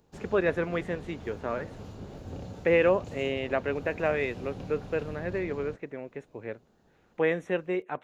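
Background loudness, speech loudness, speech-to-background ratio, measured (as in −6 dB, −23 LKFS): −43.0 LKFS, −30.0 LKFS, 13.0 dB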